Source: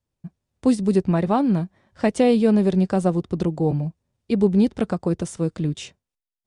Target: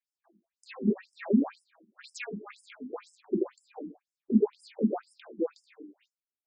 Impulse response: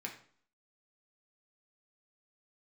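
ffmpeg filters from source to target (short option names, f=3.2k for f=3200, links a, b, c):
-filter_complex "[0:a]asettb=1/sr,asplit=3[a][b][c];[a]atrim=end=2.084[d];[b]atrim=start=2.08:end=3.29,asetpts=PTS-STARTPTS,afade=t=in:d=0.004:c=qsin,afade=t=out:st=1.206:d=0.004:c=qsin,afreqshift=-300[e];[c]atrim=start=3.286[f];[d][e]acrossfade=d=0.004:c1=hsin:c2=qsin[g];[g][f]acrossfade=d=0.004:c1=qsin:c2=hsin[h];[1:a]atrim=start_sample=2205,afade=t=out:st=0.28:d=0.01,atrim=end_sample=12789[i];[h][i]afir=irnorm=-1:irlink=0,afftfilt=real='re*between(b*sr/1024,270*pow(7200/270,0.5+0.5*sin(2*PI*2*pts/sr))/1.41,270*pow(7200/270,0.5+0.5*sin(2*PI*2*pts/sr))*1.41)':imag='im*between(b*sr/1024,270*pow(7200/270,0.5+0.5*sin(2*PI*2*pts/sr))/1.41,270*pow(7200/270,0.5+0.5*sin(2*PI*2*pts/sr))*1.41)':win_size=1024:overlap=0.75"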